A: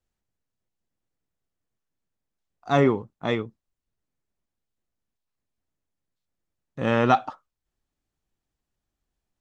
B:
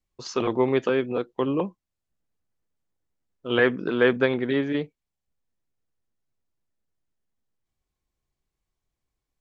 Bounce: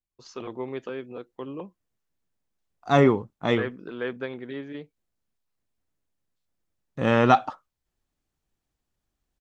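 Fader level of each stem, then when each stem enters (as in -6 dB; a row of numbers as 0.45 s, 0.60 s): +1.5 dB, -11.5 dB; 0.20 s, 0.00 s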